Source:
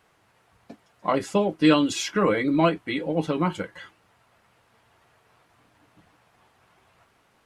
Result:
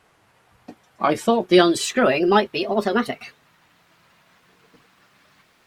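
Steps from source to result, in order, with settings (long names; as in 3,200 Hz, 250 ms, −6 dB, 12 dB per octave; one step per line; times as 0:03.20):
gliding playback speed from 98% → 165%
level +4 dB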